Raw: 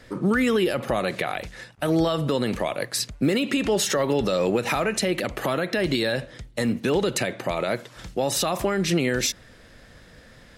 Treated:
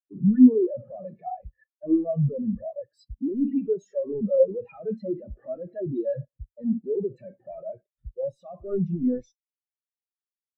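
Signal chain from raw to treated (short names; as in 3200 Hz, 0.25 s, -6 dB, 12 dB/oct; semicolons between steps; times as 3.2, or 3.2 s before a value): companded quantiser 2-bit; Schroeder reverb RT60 0.4 s, combs from 28 ms, DRR 10.5 dB; spectral expander 4:1; gain -5 dB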